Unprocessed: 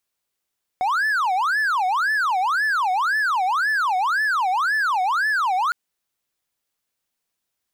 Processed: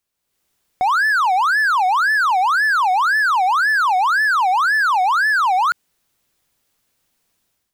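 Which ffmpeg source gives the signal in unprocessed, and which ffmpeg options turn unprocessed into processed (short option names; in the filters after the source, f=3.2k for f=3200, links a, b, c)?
-f lavfi -i "aevalsrc='0.158*(1-4*abs(mod((1240.5*t-509.5/(2*PI*1.9)*sin(2*PI*1.9*t))+0.25,1)-0.5))':d=4.91:s=44100"
-af "lowshelf=f=300:g=6.5,dynaudnorm=f=130:g=5:m=11dB,alimiter=limit=-11.5dB:level=0:latency=1:release=24"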